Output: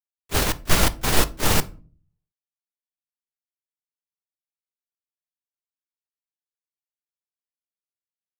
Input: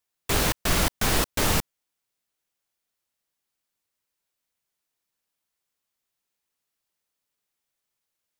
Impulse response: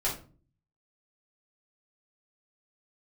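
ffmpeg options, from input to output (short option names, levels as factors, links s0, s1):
-filter_complex "[0:a]agate=range=0.0251:threshold=0.0891:ratio=16:detection=peak,asplit=2[s0][s1];[1:a]atrim=start_sample=2205[s2];[s1][s2]afir=irnorm=-1:irlink=0,volume=0.112[s3];[s0][s3]amix=inputs=2:normalize=0,volume=1.78"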